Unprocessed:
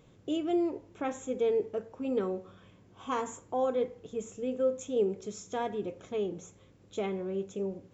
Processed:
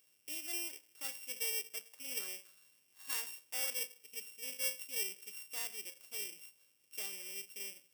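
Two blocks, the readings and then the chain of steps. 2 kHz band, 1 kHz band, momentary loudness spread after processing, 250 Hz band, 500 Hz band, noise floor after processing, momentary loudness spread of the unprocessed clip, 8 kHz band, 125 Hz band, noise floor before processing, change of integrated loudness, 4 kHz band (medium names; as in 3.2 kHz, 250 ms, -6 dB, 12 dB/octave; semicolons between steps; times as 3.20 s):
+3.0 dB, -20.0 dB, 10 LU, -28.0 dB, -24.5 dB, -72 dBFS, 10 LU, no reading, under -30 dB, -60 dBFS, -6.0 dB, +6.0 dB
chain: sorted samples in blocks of 16 samples; differentiator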